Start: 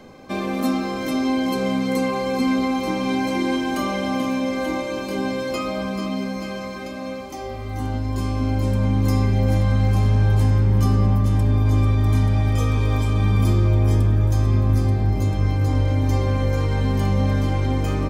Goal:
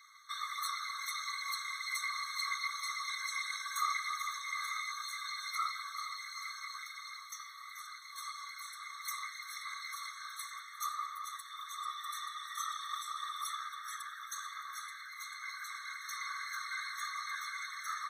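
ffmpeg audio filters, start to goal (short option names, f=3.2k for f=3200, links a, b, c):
-af "asetnsamples=n=441:p=0,asendcmd='13.5 equalizer g -3',equalizer=f=1.6k:w=5.2:g=-14,afftfilt=real='hypot(re,im)*cos(2*PI*random(0))':imag='hypot(re,im)*sin(2*PI*random(1))':win_size=512:overlap=0.75,afftfilt=real='re*eq(mod(floor(b*sr/1024/1100),2),1)':imag='im*eq(mod(floor(b*sr/1024/1100),2),1)':win_size=1024:overlap=0.75,volume=5dB"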